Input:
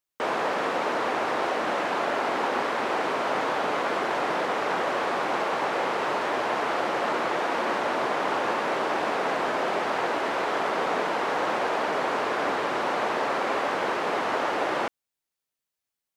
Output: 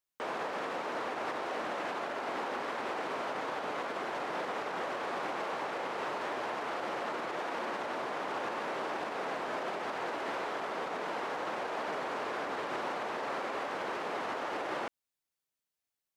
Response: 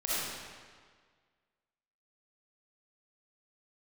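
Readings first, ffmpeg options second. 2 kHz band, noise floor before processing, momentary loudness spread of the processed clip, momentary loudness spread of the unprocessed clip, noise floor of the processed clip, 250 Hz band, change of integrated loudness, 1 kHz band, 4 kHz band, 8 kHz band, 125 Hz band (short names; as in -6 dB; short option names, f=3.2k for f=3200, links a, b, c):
-9.5 dB, under -85 dBFS, 1 LU, 1 LU, under -85 dBFS, -9.5 dB, -9.5 dB, -10.0 dB, -9.5 dB, -9.5 dB, -9.5 dB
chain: -af "alimiter=limit=-24dB:level=0:latency=1:release=124,volume=-3.5dB"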